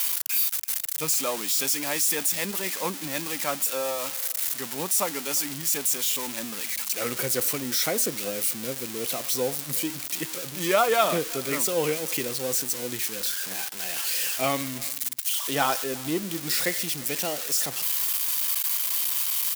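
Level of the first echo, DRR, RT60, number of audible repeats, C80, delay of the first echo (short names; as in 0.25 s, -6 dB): -22.5 dB, none, none, 1, none, 0.351 s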